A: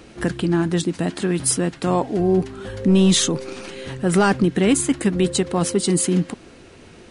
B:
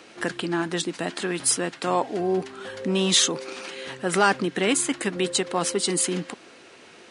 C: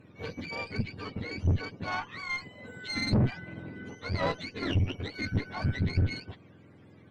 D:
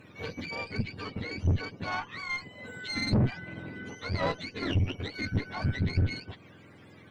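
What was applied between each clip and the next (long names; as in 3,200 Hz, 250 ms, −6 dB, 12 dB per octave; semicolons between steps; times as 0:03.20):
meter weighting curve A
frequency axis turned over on the octave scale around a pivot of 890 Hz; tube saturation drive 16 dB, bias 0.75; level −4.5 dB
one half of a high-frequency compander encoder only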